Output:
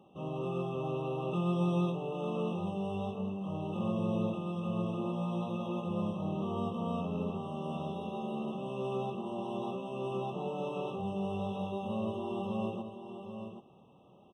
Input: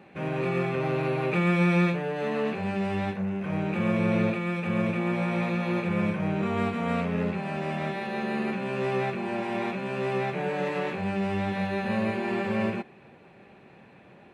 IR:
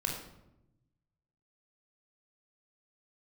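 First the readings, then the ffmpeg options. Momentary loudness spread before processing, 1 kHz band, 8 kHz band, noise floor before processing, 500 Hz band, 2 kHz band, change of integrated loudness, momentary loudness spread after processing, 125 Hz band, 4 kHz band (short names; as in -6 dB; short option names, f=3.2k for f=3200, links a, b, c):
6 LU, -7.0 dB, n/a, -53 dBFS, -7.0 dB, -20.0 dB, -8.0 dB, 6 LU, -7.0 dB, -7.5 dB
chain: -af "aecho=1:1:784:0.376,afftfilt=real='re*eq(mod(floor(b*sr/1024/1300),2),0)':imag='im*eq(mod(floor(b*sr/1024/1300),2),0)':win_size=1024:overlap=0.75,volume=-7.5dB"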